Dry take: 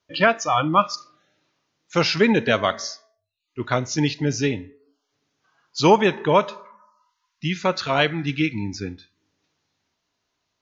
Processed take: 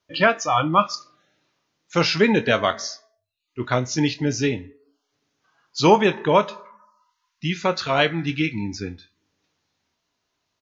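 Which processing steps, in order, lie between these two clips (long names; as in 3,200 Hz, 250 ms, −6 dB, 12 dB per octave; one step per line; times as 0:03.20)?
double-tracking delay 24 ms −12 dB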